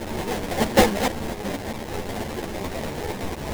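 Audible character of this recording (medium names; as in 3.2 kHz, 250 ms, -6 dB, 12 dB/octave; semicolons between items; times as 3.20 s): a quantiser's noise floor 6-bit, dither triangular; tremolo saw up 4.5 Hz, depth 45%; aliases and images of a low sample rate 1.3 kHz, jitter 20%; a shimmering, thickened sound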